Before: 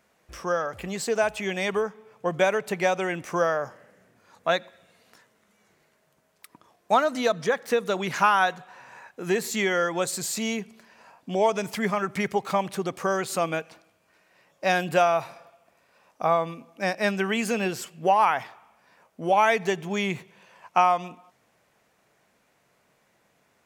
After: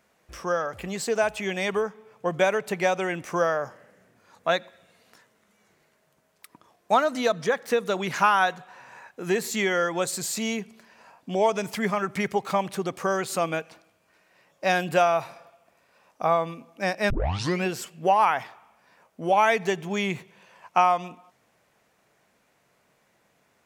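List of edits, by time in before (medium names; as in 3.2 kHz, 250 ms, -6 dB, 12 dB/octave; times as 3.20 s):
17.10 s: tape start 0.55 s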